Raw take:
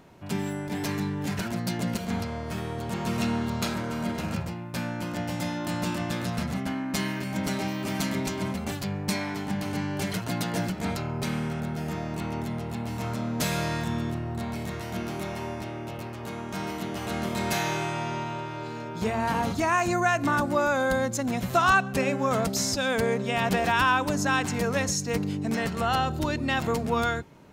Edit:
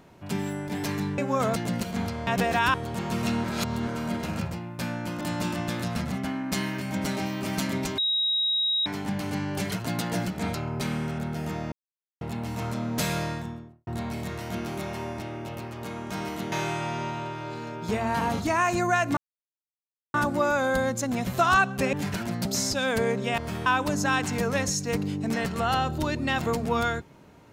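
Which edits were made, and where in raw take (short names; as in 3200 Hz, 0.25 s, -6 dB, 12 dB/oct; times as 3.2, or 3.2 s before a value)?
1.18–1.7 swap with 22.09–22.47
2.41–2.69 swap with 23.4–23.87
3.39–3.82 reverse
5.16–5.63 cut
8.4–9.28 bleep 3810 Hz -22 dBFS
12.14–12.63 mute
13.5–14.29 studio fade out
16.94–17.65 cut
20.3 insert silence 0.97 s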